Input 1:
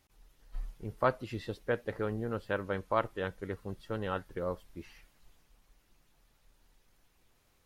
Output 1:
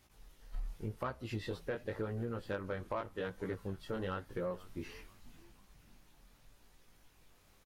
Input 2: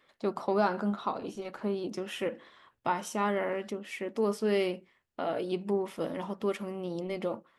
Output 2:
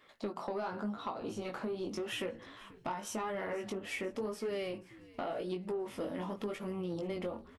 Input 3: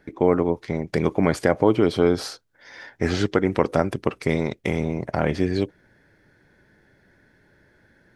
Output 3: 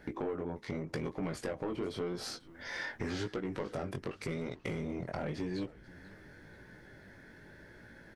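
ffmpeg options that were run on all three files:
-filter_complex "[0:a]acontrast=73,flanger=delay=16.5:depth=5.9:speed=0.89,acompressor=threshold=0.02:ratio=6,asoftclip=type=tanh:threshold=0.0447,asplit=2[s0][s1];[s1]asplit=4[s2][s3][s4][s5];[s2]adelay=486,afreqshift=-100,volume=0.1[s6];[s3]adelay=972,afreqshift=-200,volume=0.0479[s7];[s4]adelay=1458,afreqshift=-300,volume=0.0229[s8];[s5]adelay=1944,afreqshift=-400,volume=0.0111[s9];[s6][s7][s8][s9]amix=inputs=4:normalize=0[s10];[s0][s10]amix=inputs=2:normalize=0"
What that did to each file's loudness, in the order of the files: -5.5 LU, -6.0 LU, -16.0 LU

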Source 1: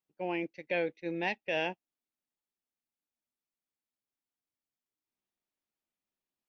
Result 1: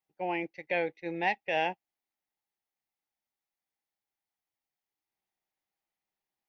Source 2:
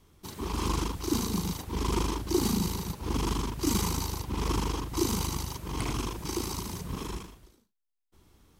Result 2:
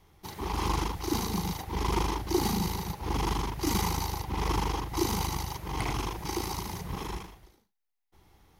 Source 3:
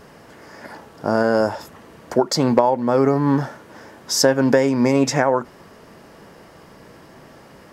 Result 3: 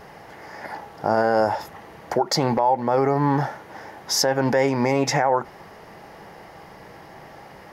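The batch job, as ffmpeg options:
-af "equalizer=f=250:t=o:w=0.33:g=-7,equalizer=f=800:t=o:w=0.33:g=10,equalizer=f=2000:t=o:w=0.33:g=6,equalizer=f=8000:t=o:w=0.33:g=-8,alimiter=limit=0.335:level=0:latency=1:release=65"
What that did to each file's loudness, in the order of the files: +2.0 LU, 0.0 LU, -3.0 LU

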